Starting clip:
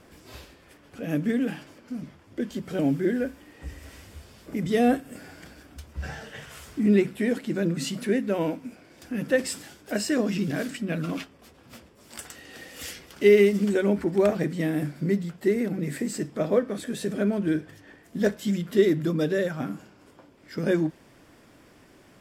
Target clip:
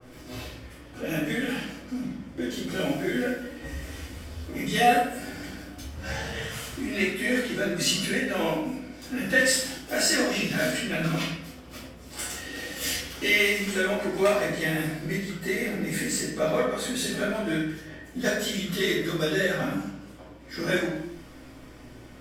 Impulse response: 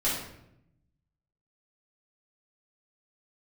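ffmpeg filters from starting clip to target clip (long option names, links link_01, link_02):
-filter_complex "[0:a]acrossover=split=710[link_01][link_02];[link_01]acompressor=threshold=-37dB:ratio=6[link_03];[link_03][link_02]amix=inputs=2:normalize=0,aeval=exprs='val(0)+0.000891*(sin(2*PI*60*n/s)+sin(2*PI*2*60*n/s)/2+sin(2*PI*3*60*n/s)/3+sin(2*PI*4*60*n/s)/4+sin(2*PI*5*60*n/s)/5)':channel_layout=same,flanger=delay=7.7:depth=5.2:regen=72:speed=0.14:shape=triangular,asplit=2[link_04][link_05];[link_05]aeval=exprs='sgn(val(0))*max(abs(val(0))-0.00266,0)':channel_layout=same,volume=-12dB[link_06];[link_04][link_06]amix=inputs=2:normalize=0[link_07];[1:a]atrim=start_sample=2205,afade=type=out:start_time=0.45:duration=0.01,atrim=end_sample=20286[link_08];[link_07][link_08]afir=irnorm=-1:irlink=0,adynamicequalizer=threshold=0.00794:dfrequency=2200:dqfactor=0.7:tfrequency=2200:tqfactor=0.7:attack=5:release=100:ratio=0.375:range=2:mode=boostabove:tftype=highshelf"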